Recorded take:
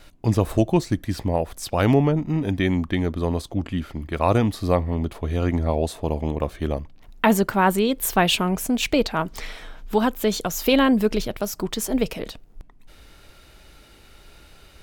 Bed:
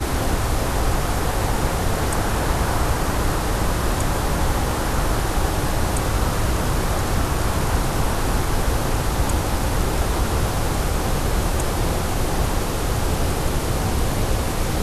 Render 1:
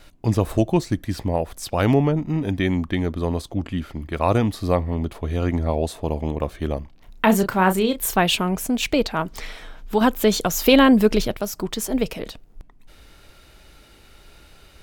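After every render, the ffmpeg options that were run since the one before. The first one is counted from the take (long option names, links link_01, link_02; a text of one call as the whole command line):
ffmpeg -i in.wav -filter_complex "[0:a]asettb=1/sr,asplit=3[link_01][link_02][link_03];[link_01]atrim=end=6.794[link_04];[link_02]atrim=start=6.79:end=8.15,asetpts=PTS-STARTPTS,afade=type=in:duration=0.004:curve=qsin,afade=type=out:start_time=1.356:duration=0.004:curve=qsin,asplit=2[link_05][link_06];[link_06]adelay=32,volume=-8.5dB[link_07];[link_05][link_07]amix=inputs=2:normalize=0,atrim=end_sample=59976[link_08];[link_03]atrim=start=8.146[link_09];[link_04][link_08]acrossfade=duration=0.004:curve1=hsin:curve2=qsin[link_10];[link_10][link_09]acrossfade=duration=0.004:curve1=qsin:curve2=hsin,asplit=3[link_11][link_12][link_13];[link_11]atrim=end=10.012[link_14];[link_12]atrim=start=10.008:end=11.342,asetpts=PTS-STARTPTS,volume=4dB[link_15];[link_13]atrim=start=11.338[link_16];[link_14][link_15]acrossfade=duration=0.004:curve1=hsin:curve2=hsin[link_17];[link_17][link_16]acrossfade=duration=0.004:curve1=hsin:curve2=hsin" out.wav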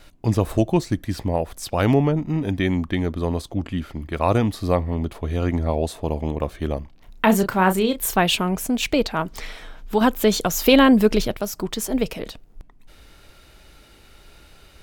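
ffmpeg -i in.wav -af anull out.wav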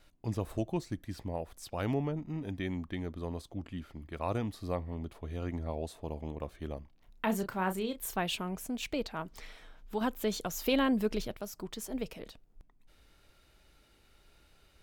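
ffmpeg -i in.wav -af "volume=-14.5dB" out.wav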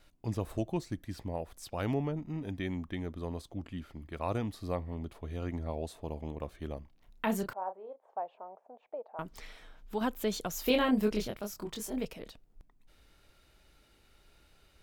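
ffmpeg -i in.wav -filter_complex "[0:a]asettb=1/sr,asplit=3[link_01][link_02][link_03];[link_01]atrim=end=2.754[link_04];[link_02]atrim=start=2.75:end=3.19,asetpts=PTS-STARTPTS,afade=type=in:duration=0.004:curve=qsin,afade=type=out:start_time=0.436:duration=0.004:curve=qsin,bandreject=frequency=4400:width=11[link_05];[link_03]atrim=start=3.186[link_06];[link_04][link_05]acrossfade=duration=0.004:curve1=hsin:curve2=qsin[link_07];[link_07][link_06]acrossfade=duration=0.004:curve1=qsin:curve2=hsin,asettb=1/sr,asplit=3[link_08][link_09][link_10];[link_08]atrim=end=7.534[link_11];[link_09]atrim=start=7.53:end=9.19,asetpts=PTS-STARTPTS,afade=type=in:duration=0.004:curve=qsin,afade=type=out:start_time=1.656:duration=0.004:curve=qsin,asuperpass=centerf=700:order=4:qfactor=1.8[link_12];[link_10]atrim=start=9.186[link_13];[link_11][link_12]acrossfade=duration=0.004:curve1=hsin:curve2=qsin[link_14];[link_14][link_13]acrossfade=duration=0.004:curve1=qsin:curve2=hsin,asettb=1/sr,asplit=3[link_15][link_16][link_17];[link_15]atrim=end=10.644[link_18];[link_16]atrim=start=10.64:end=12.05,asetpts=PTS-STARTPTS,afade=type=in:duration=0.004:curve=qsin,afade=type=out:start_time=1.406:duration=0.004:curve=qsin,asplit=2[link_19][link_20];[link_20]adelay=24,volume=-3.5dB[link_21];[link_19][link_21]amix=inputs=2:normalize=0,atrim=end_sample=62181[link_22];[link_17]atrim=start=12.046[link_23];[link_18][link_22]acrossfade=duration=0.004:curve1=hsin:curve2=qsin[link_24];[link_24][link_23]acrossfade=duration=0.004:curve1=qsin:curve2=hsin" out.wav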